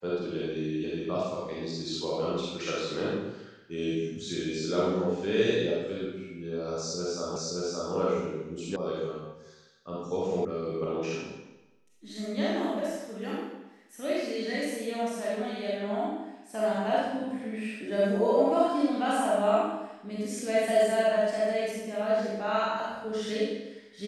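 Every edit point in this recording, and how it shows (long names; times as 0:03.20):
0:07.36: the same again, the last 0.57 s
0:08.76: cut off before it has died away
0:10.45: cut off before it has died away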